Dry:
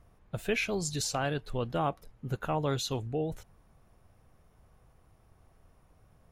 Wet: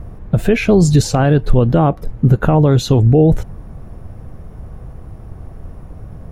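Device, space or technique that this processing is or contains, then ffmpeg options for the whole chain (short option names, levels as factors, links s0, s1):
mastering chain: -af "equalizer=f=1700:t=o:w=0.77:g=3,acompressor=threshold=0.02:ratio=2.5,tiltshelf=f=760:g=9,alimiter=level_in=13.3:limit=0.891:release=50:level=0:latency=1,volume=0.891"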